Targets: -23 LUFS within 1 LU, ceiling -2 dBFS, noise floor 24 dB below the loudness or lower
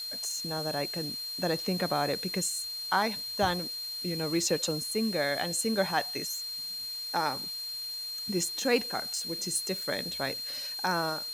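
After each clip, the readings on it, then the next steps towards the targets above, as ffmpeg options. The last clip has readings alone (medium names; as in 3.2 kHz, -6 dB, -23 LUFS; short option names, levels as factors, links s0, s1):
steady tone 4.2 kHz; tone level -35 dBFS; noise floor -38 dBFS; noise floor target -55 dBFS; loudness -30.5 LUFS; peak level -12.0 dBFS; loudness target -23.0 LUFS
-> -af "bandreject=f=4200:w=30"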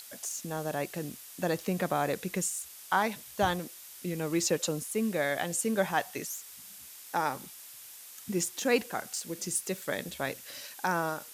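steady tone not found; noise floor -49 dBFS; noise floor target -56 dBFS
-> -af "afftdn=nr=7:nf=-49"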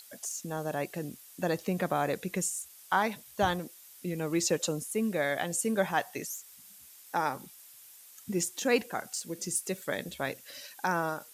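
noise floor -54 dBFS; noise floor target -56 dBFS
-> -af "afftdn=nr=6:nf=-54"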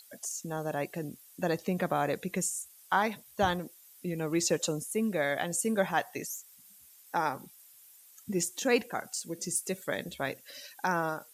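noise floor -57 dBFS; loudness -32.0 LUFS; peak level -13.0 dBFS; loudness target -23.0 LUFS
-> -af "volume=2.82"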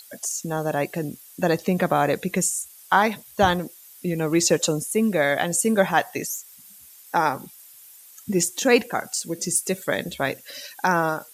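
loudness -23.0 LUFS; peak level -4.0 dBFS; noise floor -48 dBFS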